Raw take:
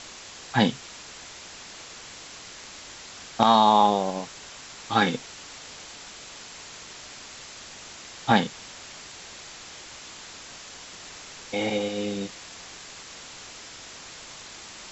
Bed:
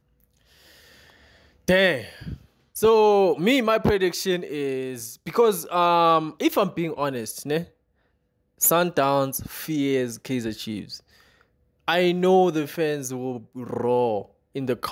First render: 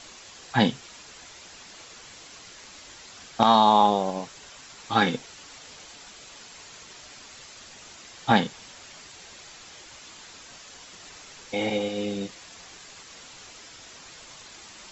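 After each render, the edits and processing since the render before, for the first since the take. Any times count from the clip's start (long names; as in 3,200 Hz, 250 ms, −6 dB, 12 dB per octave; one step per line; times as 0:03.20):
broadband denoise 6 dB, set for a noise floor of −44 dBFS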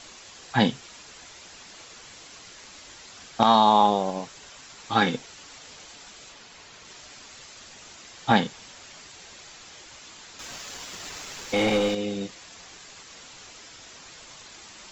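0:06.32–0:06.85: high-frequency loss of the air 63 metres
0:10.39–0:11.95: leveller curve on the samples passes 2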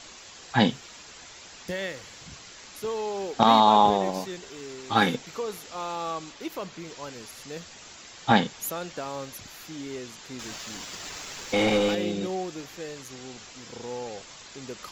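mix in bed −14 dB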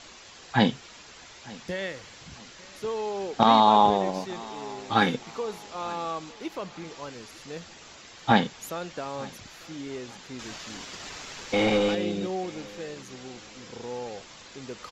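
high-frequency loss of the air 56 metres
repeating echo 899 ms, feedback 36%, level −22 dB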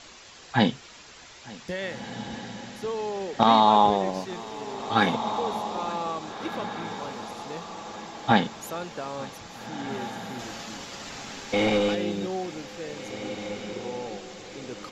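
feedback delay with all-pass diffusion 1,710 ms, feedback 41%, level −10 dB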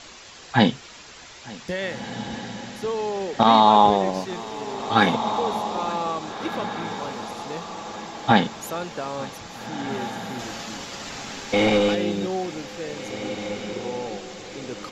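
level +4 dB
brickwall limiter −3 dBFS, peak gain reduction 3 dB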